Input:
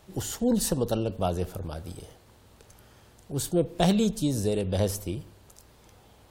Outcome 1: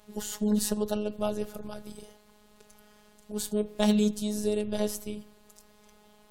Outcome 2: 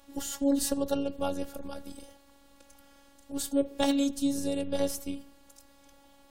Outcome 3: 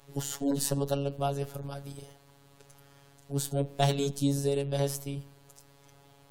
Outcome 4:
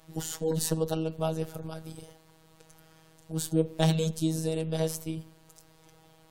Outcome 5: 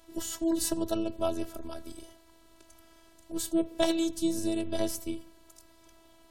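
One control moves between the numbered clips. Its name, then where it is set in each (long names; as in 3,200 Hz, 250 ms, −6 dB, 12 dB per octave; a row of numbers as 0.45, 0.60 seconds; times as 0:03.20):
phases set to zero, frequency: 210, 280, 140, 160, 330 Hertz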